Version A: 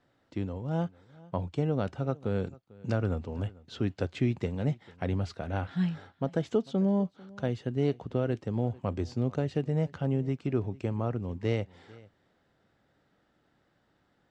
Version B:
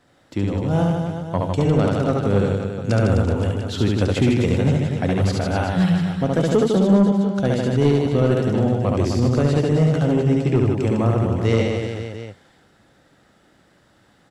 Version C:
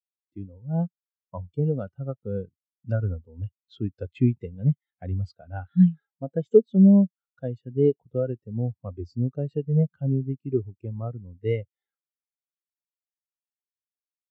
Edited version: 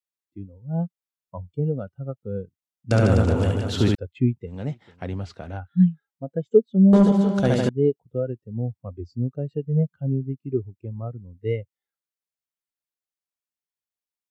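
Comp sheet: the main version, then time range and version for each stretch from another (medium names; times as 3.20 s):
C
2.91–3.95 s: from B
4.51–5.56 s: from A, crossfade 0.10 s
6.93–7.69 s: from B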